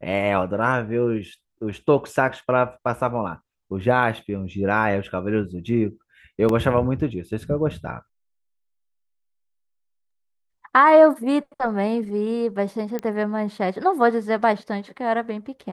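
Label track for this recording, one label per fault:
6.490000	6.490000	gap 2.7 ms
12.990000	12.990000	pop -15 dBFS

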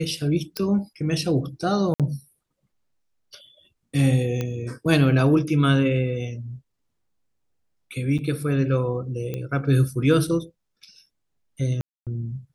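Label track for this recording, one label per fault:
0.570000	0.570000	pop -12 dBFS
1.940000	2.000000	gap 57 ms
4.410000	4.410000	pop -14 dBFS
8.180000	8.190000	gap 6.9 ms
9.340000	9.340000	pop -17 dBFS
11.810000	12.070000	gap 0.257 s

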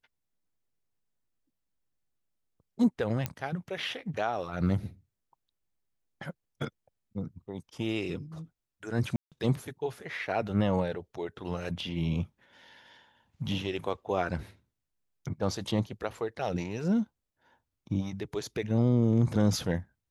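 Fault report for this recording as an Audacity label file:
3.260000	3.260000	pop -15 dBFS
9.160000	9.320000	gap 0.157 s

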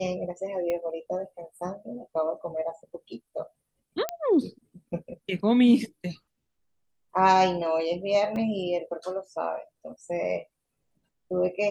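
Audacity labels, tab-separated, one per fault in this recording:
0.700000	0.700000	pop -18 dBFS
4.090000	4.090000	pop -13 dBFS
8.360000	8.360000	gap 2.7 ms

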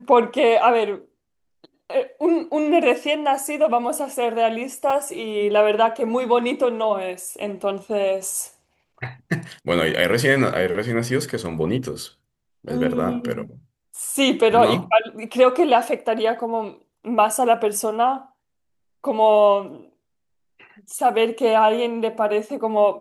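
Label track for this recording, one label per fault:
4.900000	4.900000	gap 3.5 ms

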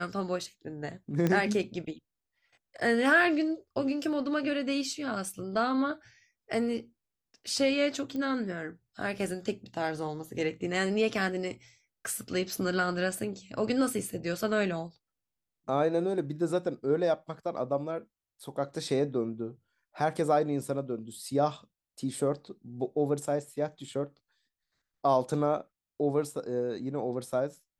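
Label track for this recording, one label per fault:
1.270000	1.270000	pop -15 dBFS
8.160000	8.160000	pop -25 dBFS

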